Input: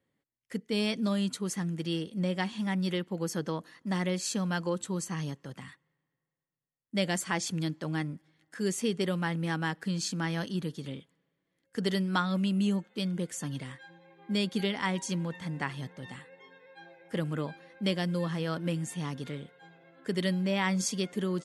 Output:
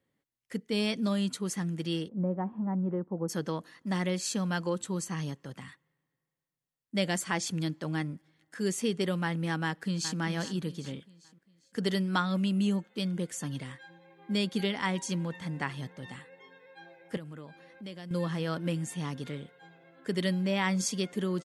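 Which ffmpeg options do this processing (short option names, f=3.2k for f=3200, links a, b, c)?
-filter_complex "[0:a]asplit=3[a][b][c];[a]afade=t=out:st=2.07:d=0.02[d];[b]lowpass=f=1.1k:w=0.5412,lowpass=f=1.1k:w=1.3066,afade=t=in:st=2.07:d=0.02,afade=t=out:st=3.28:d=0.02[e];[c]afade=t=in:st=3.28:d=0.02[f];[d][e][f]amix=inputs=3:normalize=0,asplit=2[g][h];[h]afade=t=in:st=9.64:d=0.01,afade=t=out:st=10.18:d=0.01,aecho=0:1:400|800|1200|1600:0.316228|0.126491|0.0505964|0.0202386[i];[g][i]amix=inputs=2:normalize=0,asettb=1/sr,asplit=3[j][k][l];[j]atrim=end=17.174[m];[k]atrim=start=17.17:end=18.11,asetpts=PTS-STARTPTS,afade=t=in:d=0.004:c=qsin,afade=t=out:st=0.936:d=0.004:c=qsin,acompressor=threshold=-50dB:ratio=2:attack=3.2:release=140:knee=1:detection=peak[n];[l]atrim=start=18.106[o];[m][n]acrossfade=d=0.004:c1=hsin:c2=qsin[p];[p][o]acrossfade=d=0.004:c1=qsin:c2=hsin"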